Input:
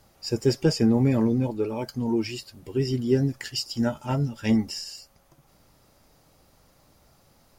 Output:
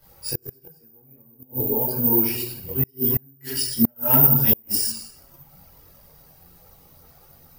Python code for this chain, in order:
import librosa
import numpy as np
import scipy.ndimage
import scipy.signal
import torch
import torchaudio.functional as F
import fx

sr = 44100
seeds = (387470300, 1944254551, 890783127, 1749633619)

p1 = 10.0 ** (-27.0 / 20.0) * np.tanh(x / 10.0 ** (-27.0 / 20.0))
p2 = x + (p1 * librosa.db_to_amplitude(-7.5))
p3 = fx.rev_fdn(p2, sr, rt60_s=0.92, lf_ratio=0.85, hf_ratio=0.55, size_ms=36.0, drr_db=-1.5)
p4 = (np.kron(scipy.signal.resample_poly(p3, 1, 3), np.eye(3)[0]) * 3)[:len(p3)]
p5 = fx.peak_eq(p4, sr, hz=3100.0, db=-5.0, octaves=1.7, at=(0.87, 2.11))
p6 = p5 + fx.echo_feedback(p5, sr, ms=73, feedback_pct=48, wet_db=-14.0, dry=0)
p7 = fx.gate_flip(p6, sr, shuts_db=-1.0, range_db=-38)
p8 = fx.chorus_voices(p7, sr, voices=4, hz=0.88, base_ms=22, depth_ms=1.6, mix_pct=65)
p9 = fx.spec_box(p8, sr, start_s=1.41, length_s=0.52, low_hz=940.0, high_hz=2700.0, gain_db=-12)
p10 = fx.high_shelf(p9, sr, hz=5400.0, db=8.0, at=(3.96, 4.92))
y = 10.0 ** (-3.5 / 20.0) * (np.abs((p10 / 10.0 ** (-3.5 / 20.0) + 3.0) % 4.0 - 2.0) - 1.0)